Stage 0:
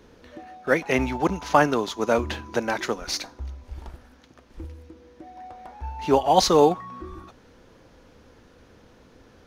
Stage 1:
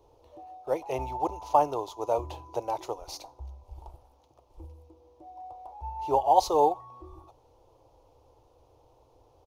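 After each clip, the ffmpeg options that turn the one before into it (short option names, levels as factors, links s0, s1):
-af "firequalizer=gain_entry='entry(130,0);entry(190,-26);entry(310,-3);entry(540,2);entry(880,8);entry(1600,-23);entry(2600,-8);entry(12000,1)':delay=0.05:min_phase=1,volume=0.422"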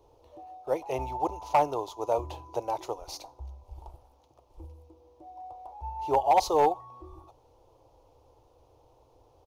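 -af "volume=5.62,asoftclip=hard,volume=0.178"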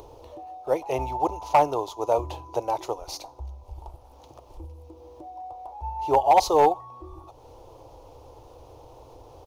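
-af "acompressor=mode=upward:threshold=0.00794:ratio=2.5,volume=1.68"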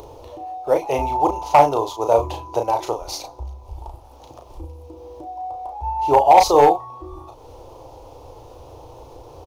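-filter_complex "[0:a]asplit=2[s0][s1];[s1]adelay=35,volume=0.531[s2];[s0][s2]amix=inputs=2:normalize=0,volume=1.88"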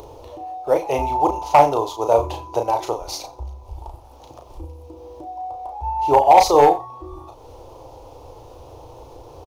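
-af "aecho=1:1:87:0.0944"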